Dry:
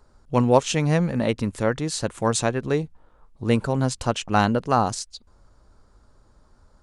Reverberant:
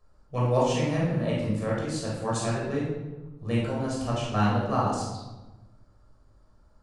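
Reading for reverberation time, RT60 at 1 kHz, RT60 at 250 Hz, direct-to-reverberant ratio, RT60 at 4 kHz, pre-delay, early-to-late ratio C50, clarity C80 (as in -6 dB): 1.1 s, 1.1 s, 1.5 s, -5.5 dB, 0.70 s, 17 ms, 0.5 dB, 3.5 dB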